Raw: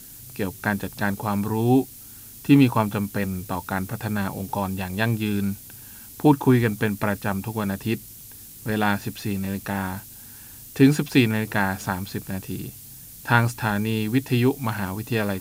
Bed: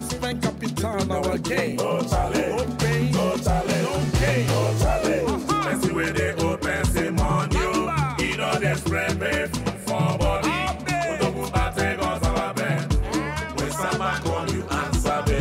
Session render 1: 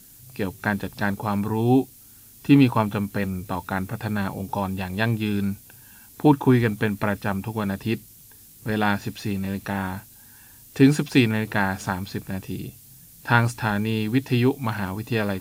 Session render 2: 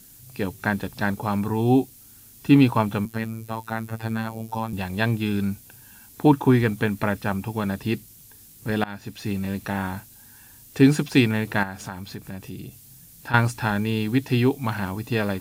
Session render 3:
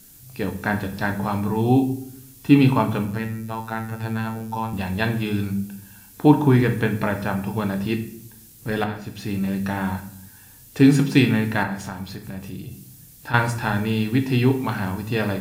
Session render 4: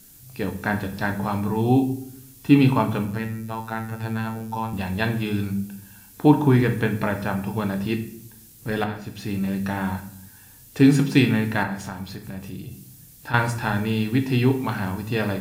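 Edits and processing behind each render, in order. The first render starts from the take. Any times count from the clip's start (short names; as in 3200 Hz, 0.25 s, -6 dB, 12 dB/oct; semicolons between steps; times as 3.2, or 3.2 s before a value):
noise print and reduce 6 dB
3.05–4.73 robotiser 112 Hz; 8.84–9.32 fade in, from -22 dB; 11.63–13.34 compressor 2:1, threshold -35 dBFS
shoebox room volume 120 m³, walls mixed, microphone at 0.45 m
gain -1 dB; limiter -3 dBFS, peak gain reduction 1 dB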